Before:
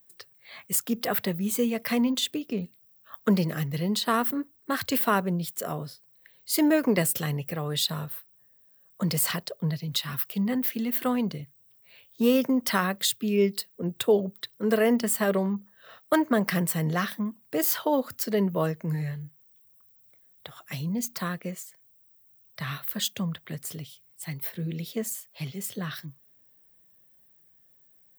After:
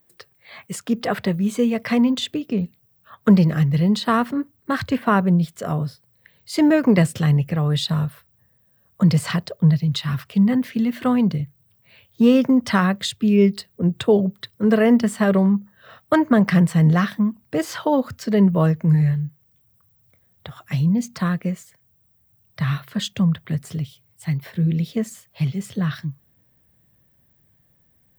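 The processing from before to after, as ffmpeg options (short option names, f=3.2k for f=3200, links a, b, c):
-filter_complex "[0:a]asettb=1/sr,asplit=3[a][b][c];[a]atrim=end=4.824[d];[b]atrim=start=4.82:end=5.49,asetpts=PTS-STARTPTS,afade=t=in:d=0.004:c=qsin,afade=t=out:st=0.666:d=0.004:c=qsin,acrossover=split=2600[e][f];[f]acompressor=threshold=-38dB:ratio=4:attack=1:release=60[g];[e][g]amix=inputs=2:normalize=0[h];[c]atrim=start=5.486[i];[d][h]acrossfade=d=0.004:c1=hsin:c2=qsin[j];[j][i]acrossfade=d=0.004:c1=qsin:c2=hsin,asubboost=boost=3:cutoff=190,acrossover=split=8600[k][l];[l]acompressor=threshold=-48dB:ratio=4:attack=1:release=60[m];[k][m]amix=inputs=2:normalize=0,highshelf=f=3.3k:g=-9.5,volume=7dB"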